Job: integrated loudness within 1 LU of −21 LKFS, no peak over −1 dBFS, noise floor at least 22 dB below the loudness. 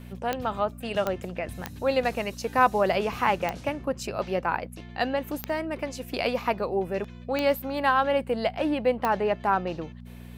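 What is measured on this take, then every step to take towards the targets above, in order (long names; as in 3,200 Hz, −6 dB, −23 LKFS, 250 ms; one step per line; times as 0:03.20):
number of clicks 7; mains hum 60 Hz; hum harmonics up to 240 Hz; level of the hum −41 dBFS; integrated loudness −27.5 LKFS; sample peak −6.5 dBFS; target loudness −21.0 LKFS
→ click removal
hum removal 60 Hz, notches 4
level +6.5 dB
brickwall limiter −1 dBFS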